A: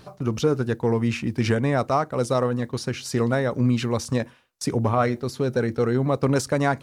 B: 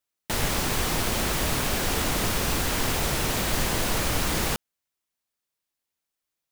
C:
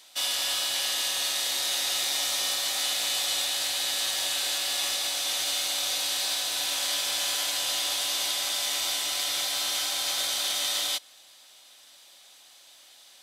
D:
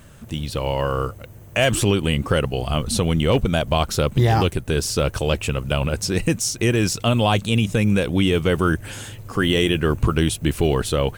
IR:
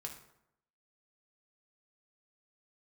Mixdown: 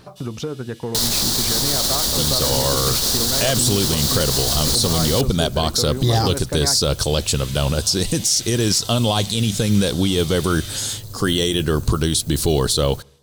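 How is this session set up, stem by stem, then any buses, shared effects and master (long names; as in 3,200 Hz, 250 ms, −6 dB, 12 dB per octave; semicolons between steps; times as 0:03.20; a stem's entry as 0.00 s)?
+2.0 dB, 0.00 s, bus B, no send, no processing
+1.5 dB, 0.65 s, bus A, no send, brickwall limiter −18 dBFS, peak gain reduction 6 dB
−13.5 dB, 0.00 s, bus B, send −13 dB, wave folding −18.5 dBFS; auto-filter notch saw down 0.91 Hz 560–2,500 Hz; automatic gain control gain up to 6 dB; automatic ducking −17 dB, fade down 0.70 s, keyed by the first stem
+1.5 dB, 1.85 s, bus A, send −17.5 dB, no processing
bus A: 0.0 dB, high shelf with overshoot 3,200 Hz +9.5 dB, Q 3; brickwall limiter −8.5 dBFS, peak gain reduction 11 dB
bus B: 0.0 dB, downward compressor 4 to 1, threshold −25 dBFS, peak gain reduction 10 dB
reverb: on, RT60 0.80 s, pre-delay 3 ms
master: no processing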